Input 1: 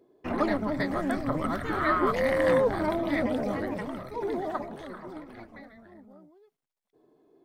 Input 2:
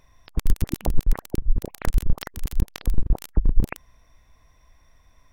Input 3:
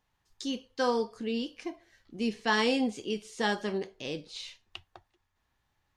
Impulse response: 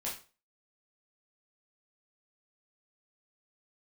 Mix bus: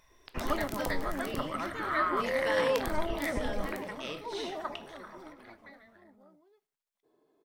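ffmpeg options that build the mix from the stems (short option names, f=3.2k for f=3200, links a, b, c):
-filter_complex "[0:a]adelay=100,volume=-2.5dB,asplit=2[a][b];[b]volume=-15.5dB[c];[1:a]volume=-2.5dB,asplit=3[d][e][f];[d]atrim=end=1.45,asetpts=PTS-STARTPTS,afade=t=out:st=1.446:d=0.004:c=hsin[g];[e]atrim=start=1.45:end=2.72,asetpts=PTS-STARTPTS,volume=0[h];[f]atrim=start=2.72,asetpts=PTS-STARTPTS,afade=t=in:d=0.004:c=hsin[i];[g][h][i]concat=n=3:v=0:a=1,asplit=2[j][k];[k]volume=-12dB[l];[2:a]equalizer=f=4.6k:w=4.8:g=-7.5,bandreject=f=6.9k:w=5.2,acompressor=threshold=-31dB:ratio=6,volume=-1dB,asplit=2[m][n];[n]volume=-8dB[o];[j][m]amix=inputs=2:normalize=0,acompressor=threshold=-25dB:ratio=6,volume=0dB[p];[3:a]atrim=start_sample=2205[q];[c][l][o]amix=inputs=3:normalize=0[r];[r][q]afir=irnorm=-1:irlink=0[s];[a][p][s]amix=inputs=3:normalize=0,lowshelf=f=440:g=-10.5,bandreject=f=740:w=20"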